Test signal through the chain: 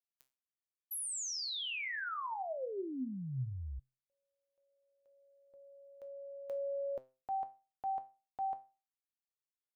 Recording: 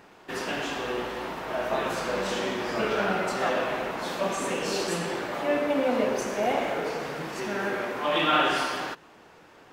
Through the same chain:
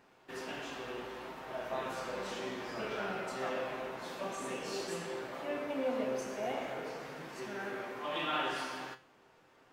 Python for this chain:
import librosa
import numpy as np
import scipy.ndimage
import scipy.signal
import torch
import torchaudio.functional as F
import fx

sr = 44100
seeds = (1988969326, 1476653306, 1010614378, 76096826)

y = fx.comb_fb(x, sr, f0_hz=130.0, decay_s=0.32, harmonics='all', damping=0.0, mix_pct=70)
y = F.gain(torch.from_numpy(y), -4.0).numpy()